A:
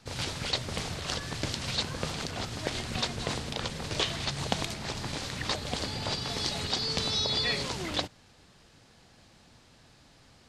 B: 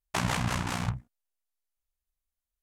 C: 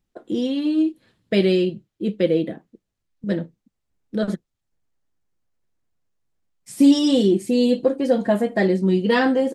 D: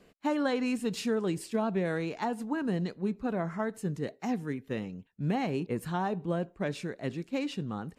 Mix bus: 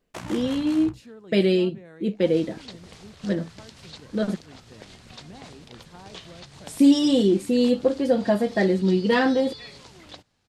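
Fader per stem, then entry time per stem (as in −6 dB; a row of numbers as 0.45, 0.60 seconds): −13.0, −9.0, −2.0, −15.5 decibels; 2.15, 0.00, 0.00, 0.00 seconds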